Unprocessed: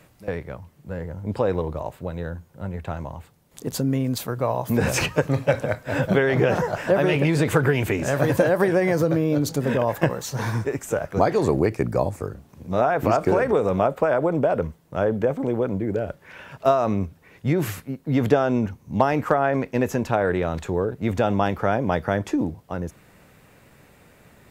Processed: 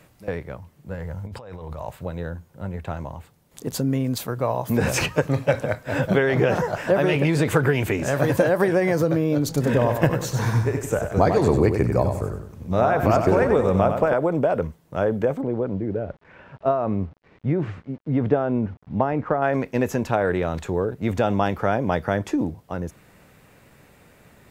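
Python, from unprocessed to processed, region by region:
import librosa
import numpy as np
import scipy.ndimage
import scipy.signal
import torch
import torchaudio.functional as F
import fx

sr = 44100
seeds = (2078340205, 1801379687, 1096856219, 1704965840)

y = fx.chain(x, sr, fx.peak_eq(hz=320.0, db=-9.0, octaves=1.3),
    fx.over_compress(threshold_db=-34.0, ratio=-1.0), at=(0.94, 2.06))
y = fx.chain(y, sr, fx.low_shelf(hz=98.0, db=10.0),
    fx.echo_feedback(ms=96, feedback_pct=39, wet_db=-7), at=(9.48, 14.14))
y = fx.chain(y, sr, fx.quant_dither(seeds[0], bits=8, dither='none'),
    fx.spacing_loss(db_at_10k=39), at=(15.41, 19.42))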